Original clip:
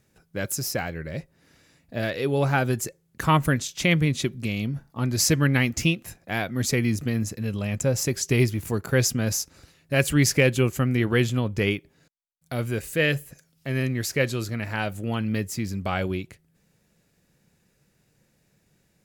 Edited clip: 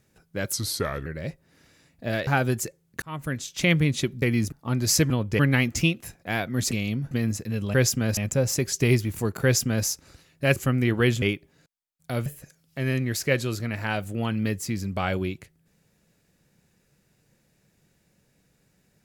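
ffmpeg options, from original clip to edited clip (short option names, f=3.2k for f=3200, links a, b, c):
-filter_complex "[0:a]asplit=16[a][b][c][d][e][f][g][h][i][j][k][l][m][n][o][p];[a]atrim=end=0.534[q];[b]atrim=start=0.53:end=0.96,asetpts=PTS-STARTPTS,asetrate=35721,aresample=44100,atrim=end_sample=23411,asetpts=PTS-STARTPTS[r];[c]atrim=start=0.956:end=2.172[s];[d]atrim=start=2.478:end=3.23,asetpts=PTS-STARTPTS,afade=t=out:st=0.748:d=0.004:c=hsin[t];[e]atrim=start=3.23:end=4.432,asetpts=PTS-STARTPTS,afade=t=in:d=0.66[u];[f]atrim=start=6.728:end=7.032[v];[g]atrim=start=4.828:end=5.412[w];[h]atrim=start=11.348:end=11.642[x];[i]atrim=start=5.408:end=6.732[y];[j]atrim=start=4.428:end=4.832[z];[k]atrim=start=7.028:end=7.662[aa];[l]atrim=start=8.918:end=9.352[ab];[m]atrim=start=7.658:end=10.052[ac];[n]atrim=start=10.688:end=11.352[ad];[o]atrim=start=11.638:end=12.682[ae];[p]atrim=start=13.148[af];[q][r]acrossfade=d=0.004:c1=hsin:c2=hsin[ag];[ag][s]acrossfade=d=0.004:c1=hsin:c2=hsin[ah];[t][u]concat=n=2:v=0:a=1[ai];[ah][ai]acrossfade=d=0.004:c1=hsin:c2=hsin[aj];[aj][v]acrossfade=d=0.004:c1=hsin:c2=hsin[ak];[ak][w]acrossfade=d=0.004:c1=hsin:c2=hsin[al];[al][x]acrossfade=d=0.004:c1=hsin:c2=hsin[am];[am][y]acrossfade=d=0.004:c1=hsin:c2=hsin[an];[an][z]acrossfade=d=0.004:c1=hsin:c2=hsin[ao];[ao][aa]acrossfade=d=0.004:c1=hsin:c2=hsin[ap];[ap][ab]acrossfade=d=0.004:c1=hsin:c2=hsin[aq];[aq][ac]acrossfade=d=0.004:c1=hsin:c2=hsin[ar];[ar][ad]acrossfade=d=0.004:c1=hsin:c2=hsin[as];[as][ae]acrossfade=d=0.004:c1=hsin:c2=hsin[at];[at][af]acrossfade=d=0.004:c1=hsin:c2=hsin"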